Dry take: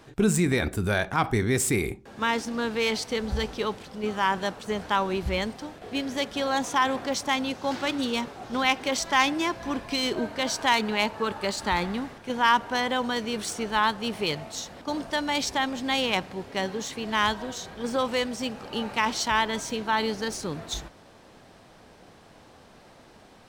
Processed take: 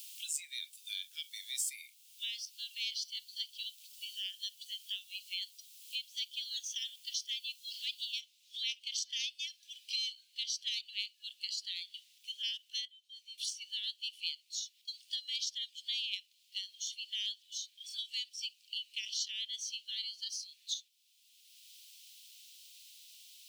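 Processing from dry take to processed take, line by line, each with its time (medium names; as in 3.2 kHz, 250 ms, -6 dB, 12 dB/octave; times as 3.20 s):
8.20 s: noise floor step -48 dB -64 dB
12.85–13.38 s: level held to a coarse grid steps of 22 dB
whole clip: steep high-pass 2.8 kHz 48 dB/octave; spectral noise reduction 13 dB; three bands compressed up and down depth 70%; trim -3.5 dB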